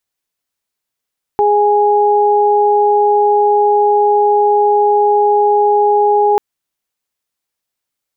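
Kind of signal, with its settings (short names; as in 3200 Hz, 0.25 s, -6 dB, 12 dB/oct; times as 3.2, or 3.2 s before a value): steady additive tone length 4.99 s, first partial 414 Hz, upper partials 1 dB, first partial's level -11.5 dB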